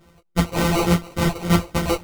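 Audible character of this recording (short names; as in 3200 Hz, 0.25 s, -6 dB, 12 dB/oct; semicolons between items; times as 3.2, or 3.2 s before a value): a buzz of ramps at a fixed pitch in blocks of 256 samples; phasing stages 8, 3.5 Hz, lowest notch 210–1900 Hz; aliases and images of a low sample rate 1700 Hz, jitter 0%; a shimmering, thickened sound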